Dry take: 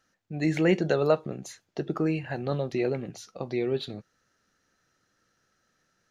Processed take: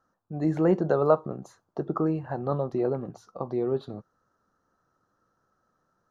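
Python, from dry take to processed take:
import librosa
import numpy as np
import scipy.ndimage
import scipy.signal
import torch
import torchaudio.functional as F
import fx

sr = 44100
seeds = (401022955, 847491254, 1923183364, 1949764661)

y = fx.high_shelf_res(x, sr, hz=1600.0, db=-12.0, q=3.0)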